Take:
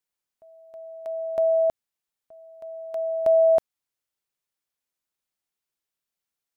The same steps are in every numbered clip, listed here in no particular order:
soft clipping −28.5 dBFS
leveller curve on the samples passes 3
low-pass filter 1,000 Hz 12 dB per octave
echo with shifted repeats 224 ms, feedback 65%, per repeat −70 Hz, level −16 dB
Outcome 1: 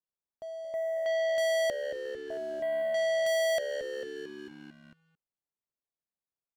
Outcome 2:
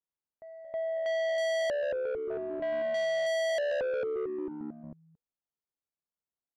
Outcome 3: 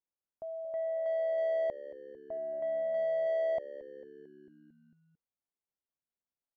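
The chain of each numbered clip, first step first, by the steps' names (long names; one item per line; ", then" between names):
low-pass filter, then soft clipping, then echo with shifted repeats, then leveller curve on the samples
echo with shifted repeats, then leveller curve on the samples, then low-pass filter, then soft clipping
soft clipping, then leveller curve on the samples, then low-pass filter, then echo with shifted repeats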